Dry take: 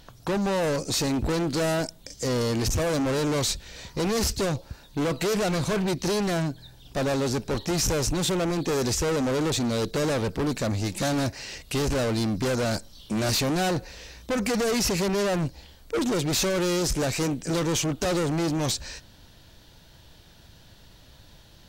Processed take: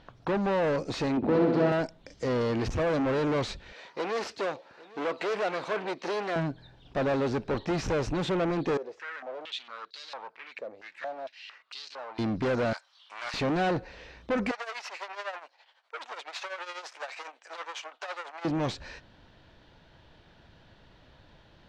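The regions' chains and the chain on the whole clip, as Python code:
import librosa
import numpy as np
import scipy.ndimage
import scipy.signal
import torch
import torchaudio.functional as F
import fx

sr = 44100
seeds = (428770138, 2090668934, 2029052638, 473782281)

y = fx.chain(x, sr, fx.bandpass_edges(low_hz=210.0, high_hz=5800.0),
    fx.tilt_shelf(db=6.0, hz=880.0),
    fx.room_flutter(wall_m=10.8, rt60_s=1.1), at=(1.17, 1.72))
y = fx.chain(y, sr, fx.highpass(hz=450.0, slope=12),
    fx.echo_single(ms=806, db=-20.5), at=(3.73, 6.36))
y = fx.chain(y, sr, fx.tilt_eq(slope=4.0),
    fx.filter_held_bandpass(hz=4.4, low_hz=480.0, high_hz=4300.0), at=(8.77, 12.19))
y = fx.chain(y, sr, fx.highpass(hz=960.0, slope=24),
    fx.doppler_dist(depth_ms=0.13), at=(12.73, 13.34))
y = fx.chain(y, sr, fx.highpass(hz=740.0, slope=24),
    fx.tremolo_shape(shape='triangle', hz=12.0, depth_pct=80), at=(14.51, 18.45))
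y = scipy.signal.sosfilt(scipy.signal.butter(2, 2400.0, 'lowpass', fs=sr, output='sos'), y)
y = fx.low_shelf(y, sr, hz=180.0, db=-7.5)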